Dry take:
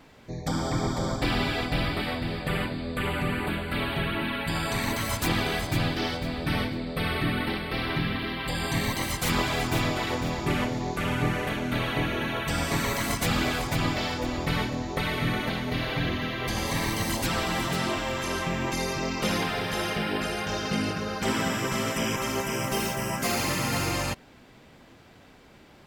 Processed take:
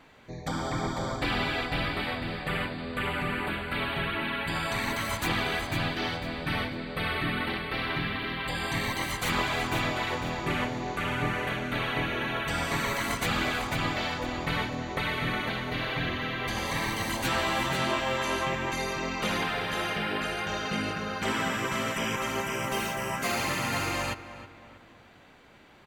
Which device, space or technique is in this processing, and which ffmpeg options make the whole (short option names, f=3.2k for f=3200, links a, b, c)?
through cloth: -filter_complex "[0:a]highshelf=f=3.4k:g=-12,bandreject=f=5.2k:w=9.2,asettb=1/sr,asplit=3[a][b][c];[a]atrim=end=17.234[d];[b]atrim=start=17.23:end=18.55,asetpts=PTS-STARTPTS,afade=t=in:d=0.004:c=qsin,afade=t=out:st=1.316:d=0.004:c=qsin,asplit=2[e][f];[f]adelay=15,volume=-2.5dB[g];[e][g]amix=inputs=2:normalize=0,atrim=end_sample=58212[h];[c]atrim=start=18.546[i];[d][h]acrossfade=d=0.004:c1=hsin:c2=qsin[j];[j][i]acrossfade=d=0.004:c1=qsin:c2=hsin,tiltshelf=f=890:g=-5.5,asplit=2[k][l];[l]adelay=318,lowpass=f=2.4k:p=1,volume=-13dB,asplit=2[m][n];[n]adelay=318,lowpass=f=2.4k:p=1,volume=0.45,asplit=2[o][p];[p]adelay=318,lowpass=f=2.4k:p=1,volume=0.45,asplit=2[q][r];[r]adelay=318,lowpass=f=2.4k:p=1,volume=0.45[s];[k][m][o][q][s]amix=inputs=5:normalize=0"